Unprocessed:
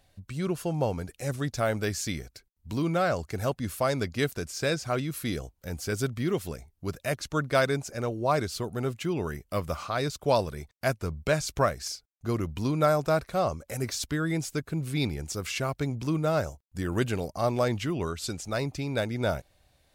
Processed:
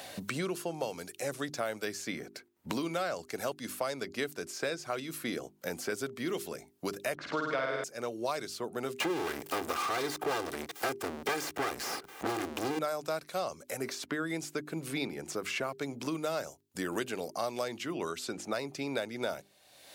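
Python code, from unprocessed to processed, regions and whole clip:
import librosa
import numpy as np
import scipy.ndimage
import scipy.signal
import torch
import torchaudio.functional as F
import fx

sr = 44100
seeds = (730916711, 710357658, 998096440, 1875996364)

y = fx.chain(x, sr, fx.lowpass(hz=2100.0, slope=12),
    fx.room_flutter(wall_m=8.9, rt60_s=1.3),
    fx.band_squash(depth_pct=40), at=(7.15, 7.84))
y = fx.chain(y, sr, fx.lower_of_two(delay_ms=2.5),
    fx.power_curve(exponent=0.35), at=(9.0, 12.79))
y = scipy.signal.sosfilt(scipy.signal.butter(2, 280.0, 'highpass', fs=sr, output='sos'), y)
y = fx.hum_notches(y, sr, base_hz=50, count=8)
y = fx.band_squash(y, sr, depth_pct=100)
y = y * 10.0 ** (-7.0 / 20.0)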